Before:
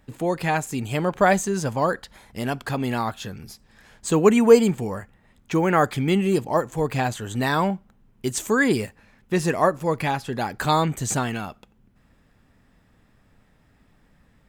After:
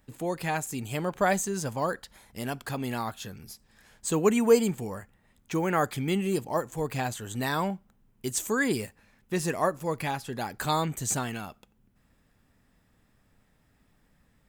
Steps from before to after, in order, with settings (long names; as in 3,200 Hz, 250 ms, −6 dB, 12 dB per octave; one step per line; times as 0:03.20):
high-shelf EQ 6,600 Hz +9.5 dB
level −7 dB